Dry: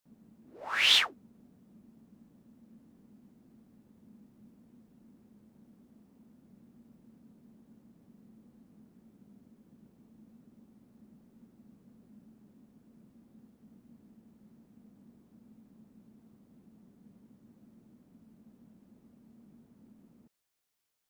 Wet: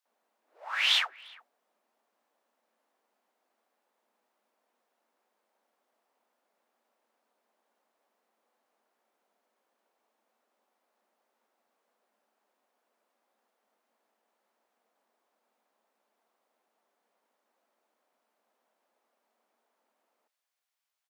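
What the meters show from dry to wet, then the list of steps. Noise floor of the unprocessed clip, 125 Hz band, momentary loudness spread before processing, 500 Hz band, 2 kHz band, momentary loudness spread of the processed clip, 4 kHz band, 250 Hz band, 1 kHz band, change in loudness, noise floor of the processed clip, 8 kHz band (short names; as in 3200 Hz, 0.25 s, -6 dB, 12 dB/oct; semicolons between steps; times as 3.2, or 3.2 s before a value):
-66 dBFS, under -40 dB, 13 LU, -5.5 dB, -1.0 dB, 12 LU, -2.5 dB, -32.5 dB, -0.5 dB, -1.5 dB, -81 dBFS, -5.0 dB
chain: HPF 640 Hz 24 dB/oct; high shelf 4700 Hz -7 dB; speakerphone echo 0.35 s, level -23 dB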